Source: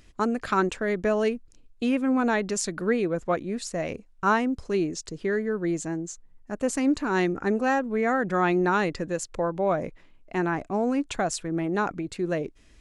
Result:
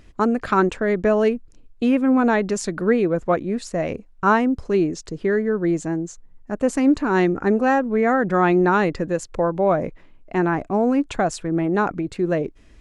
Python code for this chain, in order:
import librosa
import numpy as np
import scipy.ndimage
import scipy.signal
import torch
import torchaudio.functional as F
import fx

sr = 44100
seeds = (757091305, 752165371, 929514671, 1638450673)

y = fx.high_shelf(x, sr, hz=2600.0, db=-9.0)
y = y * 10.0 ** (6.5 / 20.0)